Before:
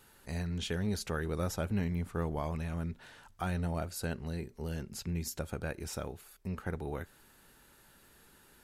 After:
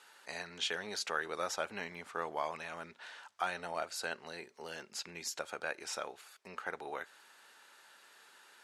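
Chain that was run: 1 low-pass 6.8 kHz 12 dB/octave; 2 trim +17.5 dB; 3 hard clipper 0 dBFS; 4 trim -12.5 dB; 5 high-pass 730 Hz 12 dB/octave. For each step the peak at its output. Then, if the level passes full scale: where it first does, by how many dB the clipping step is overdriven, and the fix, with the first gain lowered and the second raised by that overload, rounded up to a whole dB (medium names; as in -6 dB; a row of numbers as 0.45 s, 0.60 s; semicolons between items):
-23.0 dBFS, -5.5 dBFS, -5.5 dBFS, -18.0 dBFS, -19.5 dBFS; nothing clips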